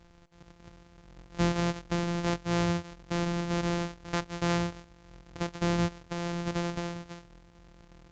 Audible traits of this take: a buzz of ramps at a fixed pitch in blocks of 256 samples; A-law

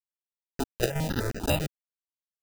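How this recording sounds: a quantiser's noise floor 6-bit, dither none; chopped level 2.1 Hz, depth 65%, duty 80%; aliases and images of a low sample rate 1.1 kHz, jitter 0%; notches that jump at a steady rate 10 Hz 260–3400 Hz

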